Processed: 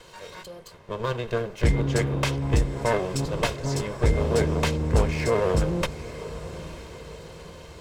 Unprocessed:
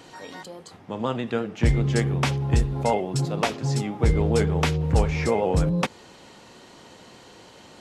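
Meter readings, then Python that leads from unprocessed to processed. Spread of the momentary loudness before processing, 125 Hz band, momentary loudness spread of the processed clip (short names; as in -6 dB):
16 LU, -2.5 dB, 19 LU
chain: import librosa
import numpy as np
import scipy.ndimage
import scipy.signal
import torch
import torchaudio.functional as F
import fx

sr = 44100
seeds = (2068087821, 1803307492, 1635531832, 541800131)

y = fx.lower_of_two(x, sr, delay_ms=1.9)
y = fx.echo_diffused(y, sr, ms=900, feedback_pct=50, wet_db=-14)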